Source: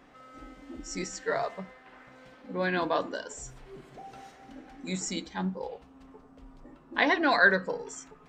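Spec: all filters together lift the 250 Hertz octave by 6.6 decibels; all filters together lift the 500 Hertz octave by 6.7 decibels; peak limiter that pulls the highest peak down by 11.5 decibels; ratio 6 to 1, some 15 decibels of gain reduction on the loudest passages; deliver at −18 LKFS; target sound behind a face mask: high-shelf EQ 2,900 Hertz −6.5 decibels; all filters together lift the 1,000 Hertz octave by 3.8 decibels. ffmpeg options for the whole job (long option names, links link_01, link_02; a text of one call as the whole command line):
ffmpeg -i in.wav -af "equalizer=frequency=250:width_type=o:gain=7,equalizer=frequency=500:width_type=o:gain=6,equalizer=frequency=1000:width_type=o:gain=3,acompressor=threshold=-31dB:ratio=6,alimiter=level_in=3dB:limit=-24dB:level=0:latency=1,volume=-3dB,highshelf=frequency=2900:gain=-6.5,volume=22dB" out.wav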